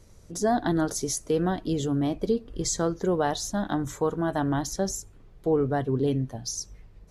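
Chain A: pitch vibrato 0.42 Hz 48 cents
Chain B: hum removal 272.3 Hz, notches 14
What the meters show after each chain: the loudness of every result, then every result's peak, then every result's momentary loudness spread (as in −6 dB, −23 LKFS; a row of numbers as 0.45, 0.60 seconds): −27.5, −27.5 LKFS; −13.0, −13.0 dBFS; 8, 7 LU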